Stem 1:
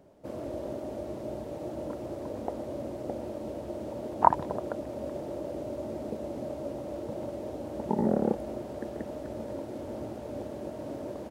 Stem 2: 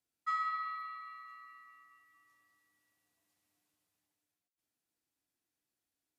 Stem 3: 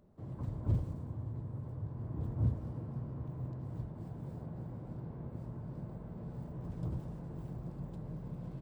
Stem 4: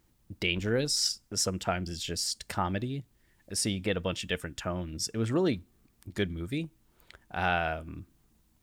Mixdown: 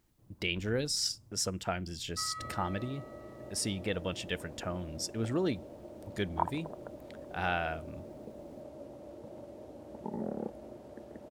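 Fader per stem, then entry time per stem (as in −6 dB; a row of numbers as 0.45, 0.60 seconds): −11.0, −7.5, −19.5, −4.0 decibels; 2.15, 1.90, 0.00, 0.00 seconds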